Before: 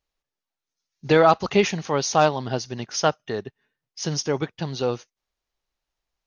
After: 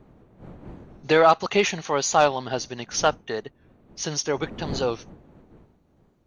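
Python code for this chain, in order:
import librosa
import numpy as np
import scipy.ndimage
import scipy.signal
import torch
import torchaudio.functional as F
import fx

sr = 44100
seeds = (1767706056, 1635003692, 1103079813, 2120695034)

p1 = fx.dmg_wind(x, sr, seeds[0], corner_hz=190.0, level_db=-37.0)
p2 = fx.low_shelf(p1, sr, hz=270.0, db=-11.5)
p3 = fx.notch(p2, sr, hz=5100.0, q=8.2)
p4 = 10.0 ** (-18.0 / 20.0) * np.tanh(p3 / 10.0 ** (-18.0 / 20.0))
p5 = p3 + F.gain(torch.from_numpy(p4), -9.5).numpy()
y = fx.record_warp(p5, sr, rpm=45.0, depth_cents=100.0)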